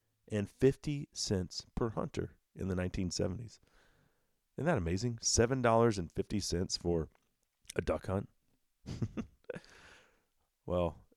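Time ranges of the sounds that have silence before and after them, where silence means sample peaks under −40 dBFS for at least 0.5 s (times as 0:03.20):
0:04.58–0:07.04
0:07.70–0:08.25
0:08.88–0:09.57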